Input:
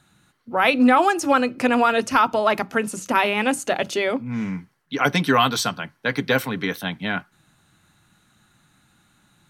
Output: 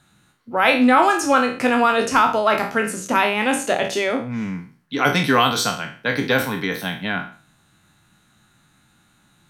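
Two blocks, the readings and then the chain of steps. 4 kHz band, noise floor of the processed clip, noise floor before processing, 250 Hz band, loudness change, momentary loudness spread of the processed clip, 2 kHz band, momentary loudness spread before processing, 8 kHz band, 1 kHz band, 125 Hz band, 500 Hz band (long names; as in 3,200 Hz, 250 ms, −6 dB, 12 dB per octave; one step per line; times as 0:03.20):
+2.0 dB, −59 dBFS, −64 dBFS, +1.0 dB, +2.0 dB, 12 LU, +2.5 dB, 10 LU, +3.0 dB, +2.0 dB, +1.0 dB, +1.5 dB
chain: peak hold with a decay on every bin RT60 0.42 s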